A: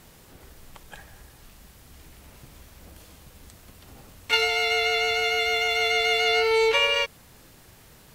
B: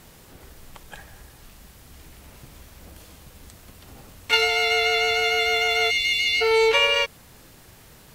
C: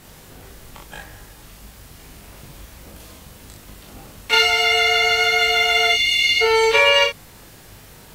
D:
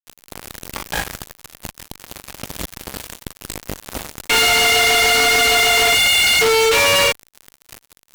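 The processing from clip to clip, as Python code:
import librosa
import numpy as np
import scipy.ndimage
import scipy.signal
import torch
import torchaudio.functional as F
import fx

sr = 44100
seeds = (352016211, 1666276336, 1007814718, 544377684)

y1 = fx.spec_box(x, sr, start_s=5.9, length_s=0.51, low_hz=290.0, high_hz=2100.0, gain_db=-27)
y1 = y1 * librosa.db_to_amplitude(2.5)
y2 = fx.room_early_taps(y1, sr, ms=(20, 39, 62), db=(-4.5, -3.0, -5.5))
y2 = y2 * librosa.db_to_amplitude(2.0)
y3 = fx.fuzz(y2, sr, gain_db=40.0, gate_db=-35.0)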